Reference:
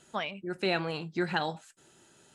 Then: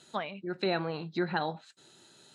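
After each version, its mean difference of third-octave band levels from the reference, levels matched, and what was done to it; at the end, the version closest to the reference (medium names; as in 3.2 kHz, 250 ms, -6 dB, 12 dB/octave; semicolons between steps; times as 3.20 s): 2.5 dB: low-pass that closes with the level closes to 1.7 kHz, closed at -29.5 dBFS; high-pass 94 Hz; peaking EQ 4 kHz +14 dB 0.28 oct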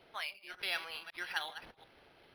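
11.5 dB: chunks repeated in reverse 184 ms, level -11.5 dB; Bessel high-pass 2.2 kHz, order 2; decimation joined by straight lines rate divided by 6×; trim +2.5 dB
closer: first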